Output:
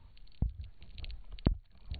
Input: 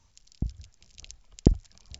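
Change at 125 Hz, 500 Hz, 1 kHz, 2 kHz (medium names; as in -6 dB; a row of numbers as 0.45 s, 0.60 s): -7.0 dB, -12.0 dB, -4.5 dB, +0.5 dB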